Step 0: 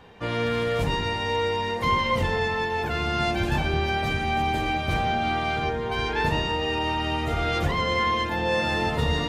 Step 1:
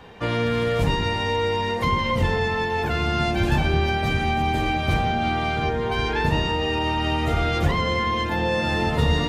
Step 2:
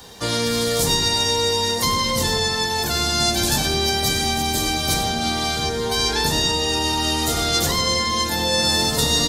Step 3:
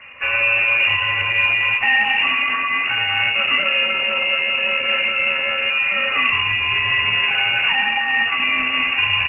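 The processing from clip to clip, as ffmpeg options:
-filter_complex "[0:a]acrossover=split=320[s0][s1];[s1]acompressor=threshold=0.0355:ratio=2.5[s2];[s0][s2]amix=inputs=2:normalize=0,volume=1.78"
-filter_complex "[0:a]acrossover=split=160[s0][s1];[s0]asoftclip=type=tanh:threshold=0.0447[s2];[s1]aexciter=amount=13.7:drive=2.9:freq=3900[s3];[s2][s3]amix=inputs=2:normalize=0,aecho=1:1:99:0.266"
-filter_complex "[0:a]asplit=2[s0][s1];[s1]adelay=39,volume=0.299[s2];[s0][s2]amix=inputs=2:normalize=0,lowpass=f=2500:t=q:w=0.5098,lowpass=f=2500:t=q:w=0.6013,lowpass=f=2500:t=q:w=0.9,lowpass=f=2500:t=q:w=2.563,afreqshift=-2900,volume=1.78" -ar 48000 -c:a libopus -b:a 12k

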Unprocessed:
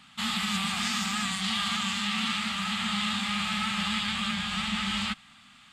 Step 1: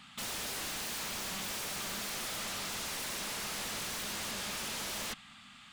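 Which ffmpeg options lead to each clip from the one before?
-af "aeval=exprs='0.02*(abs(mod(val(0)/0.02+3,4)-2)-1)':c=same"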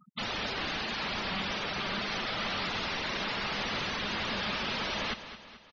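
-filter_complex "[0:a]lowpass=4700,afftfilt=real='re*gte(hypot(re,im),0.00891)':imag='im*gte(hypot(re,im),0.00891)':win_size=1024:overlap=0.75,asplit=2[s0][s1];[s1]aecho=0:1:216|432|648|864|1080:0.237|0.119|0.0593|0.0296|0.0148[s2];[s0][s2]amix=inputs=2:normalize=0,volume=2.51"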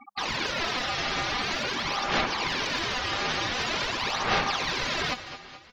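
-af "aphaser=in_gain=1:out_gain=1:delay=4.8:decay=0.66:speed=0.46:type=sinusoidal,aeval=exprs='val(0)*sin(2*PI*1000*n/s)':c=same,bandreject=f=50:t=h:w=6,bandreject=f=100:t=h:w=6,bandreject=f=150:t=h:w=6,bandreject=f=200:t=h:w=6,volume=1.78"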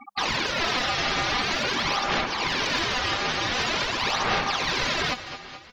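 -af "alimiter=limit=0.126:level=0:latency=1:release=362,volume=1.68"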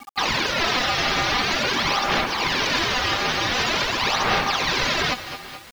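-af "acrusher=bits=7:mix=0:aa=0.000001,volume=1.5"

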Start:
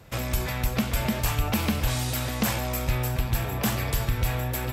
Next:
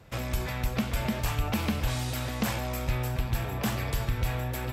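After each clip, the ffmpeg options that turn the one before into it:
-af "highshelf=f=6900:g=-6.5,volume=0.708"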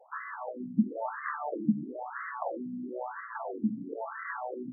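-af "asubboost=boost=2.5:cutoff=84,afftfilt=real='re*between(b*sr/1024,210*pow(1500/210,0.5+0.5*sin(2*PI*1*pts/sr))/1.41,210*pow(1500/210,0.5+0.5*sin(2*PI*1*pts/sr))*1.41)':imag='im*between(b*sr/1024,210*pow(1500/210,0.5+0.5*sin(2*PI*1*pts/sr))/1.41,210*pow(1500/210,0.5+0.5*sin(2*PI*1*pts/sr))*1.41)':win_size=1024:overlap=0.75,volume=1.88"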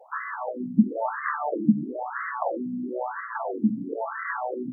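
-af "highpass=57,volume=2.24"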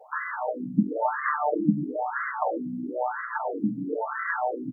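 -af "aecho=1:1:6.6:0.65"

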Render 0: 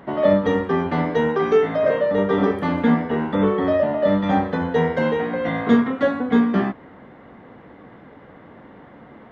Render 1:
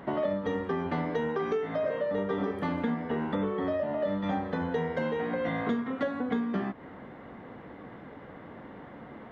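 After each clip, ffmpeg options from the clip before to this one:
-af "acompressor=threshold=0.0501:ratio=6,volume=0.841"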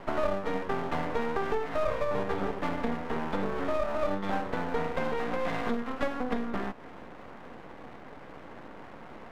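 -af "equalizer=f=860:w=0.53:g=6,aeval=exprs='max(val(0),0)':c=same"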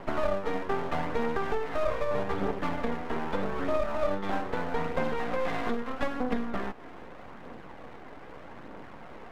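-af "aphaser=in_gain=1:out_gain=1:delay=3.1:decay=0.27:speed=0.8:type=triangular"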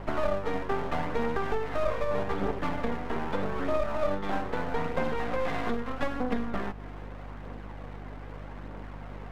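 -af "aeval=exprs='val(0)+0.00891*(sin(2*PI*50*n/s)+sin(2*PI*2*50*n/s)/2+sin(2*PI*3*50*n/s)/3+sin(2*PI*4*50*n/s)/4+sin(2*PI*5*50*n/s)/5)':c=same"

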